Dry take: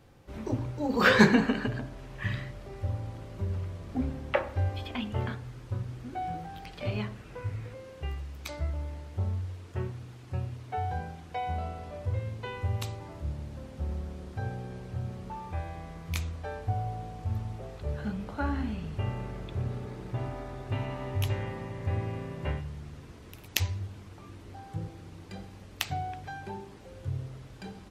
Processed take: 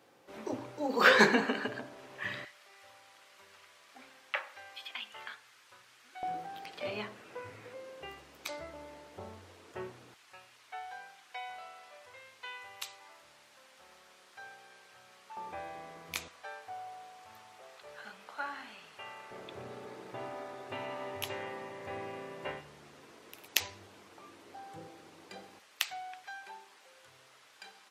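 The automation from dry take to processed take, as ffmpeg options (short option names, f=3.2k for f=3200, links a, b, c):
-af "asetnsamples=n=441:p=0,asendcmd='2.45 highpass f 1500;6.23 highpass f 370;10.14 highpass f 1300;15.37 highpass f 390;16.28 highpass f 1000;19.31 highpass f 410;25.59 highpass f 1100',highpass=370"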